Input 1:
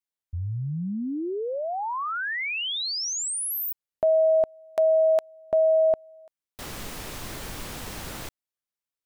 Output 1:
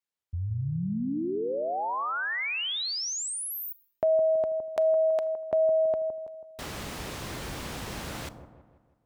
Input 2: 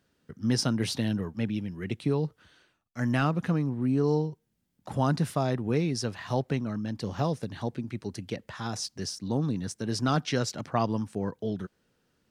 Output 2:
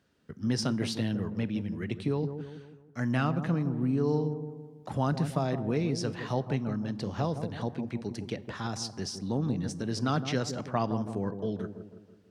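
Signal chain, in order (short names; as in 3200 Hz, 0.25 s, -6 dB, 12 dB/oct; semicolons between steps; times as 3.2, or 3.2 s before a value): HPF 42 Hz; high shelf 9200 Hz -9 dB; in parallel at -1 dB: compressor, threshold -34 dBFS; on the sum: dark delay 0.163 s, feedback 47%, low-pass 860 Hz, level -8 dB; Schroeder reverb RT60 0.52 s, combs from 30 ms, DRR 20 dB; gain -4.5 dB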